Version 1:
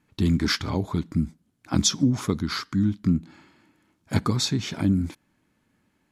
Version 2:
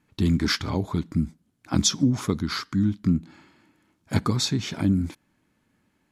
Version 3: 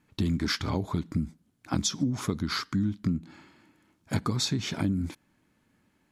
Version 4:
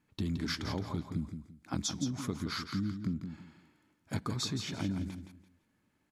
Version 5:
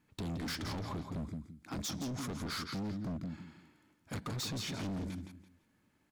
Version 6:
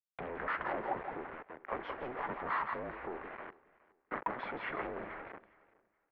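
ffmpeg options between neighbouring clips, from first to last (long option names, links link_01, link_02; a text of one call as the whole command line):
ffmpeg -i in.wav -af anull out.wav
ffmpeg -i in.wav -af "acompressor=threshold=-24dB:ratio=5" out.wav
ffmpeg -i in.wav -af "aecho=1:1:169|338|507:0.398|0.107|0.029,volume=-7dB" out.wav
ffmpeg -i in.wav -af "asoftclip=type=hard:threshold=-38dB,volume=2dB" out.wav
ffmpeg -i in.wav -af "acrusher=bits=7:mix=0:aa=0.000001,aecho=1:1:417|834:0.0794|0.0207,highpass=frequency=590:width_type=q:width=0.5412,highpass=frequency=590:width_type=q:width=1.307,lowpass=frequency=2300:width_type=q:width=0.5176,lowpass=frequency=2300:width_type=q:width=0.7071,lowpass=frequency=2300:width_type=q:width=1.932,afreqshift=-250,volume=10dB" out.wav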